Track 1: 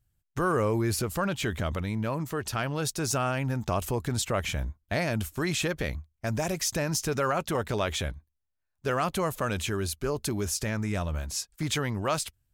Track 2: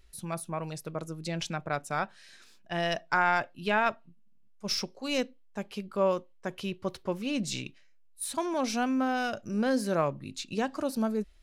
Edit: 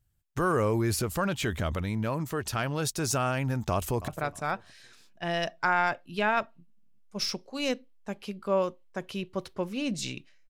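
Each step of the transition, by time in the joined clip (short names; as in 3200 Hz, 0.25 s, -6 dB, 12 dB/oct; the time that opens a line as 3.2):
track 1
3.7–4.08 echo throw 0.31 s, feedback 25%, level -15 dB
4.08 switch to track 2 from 1.57 s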